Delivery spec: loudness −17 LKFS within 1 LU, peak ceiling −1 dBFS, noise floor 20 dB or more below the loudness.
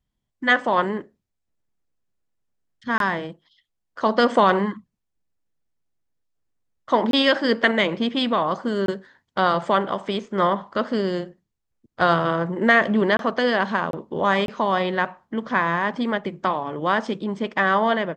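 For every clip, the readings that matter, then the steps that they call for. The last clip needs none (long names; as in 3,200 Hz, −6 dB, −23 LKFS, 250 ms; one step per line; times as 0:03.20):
number of dropouts 6; longest dropout 22 ms; integrated loudness −22.0 LKFS; sample peak −3.5 dBFS; target loudness −17.0 LKFS
→ repair the gap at 0:02.98/0:07.11/0:08.86/0:13.17/0:13.91/0:14.46, 22 ms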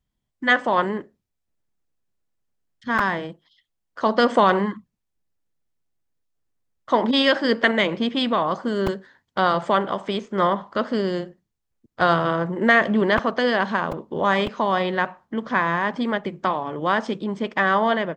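number of dropouts 0; integrated loudness −22.0 LKFS; sample peak −3.5 dBFS; target loudness −17.0 LKFS
→ level +5 dB
brickwall limiter −1 dBFS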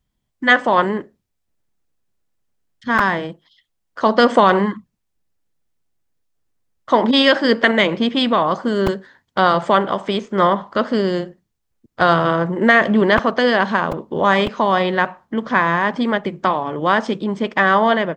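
integrated loudness −17.0 LKFS; sample peak −1.0 dBFS; background noise floor −73 dBFS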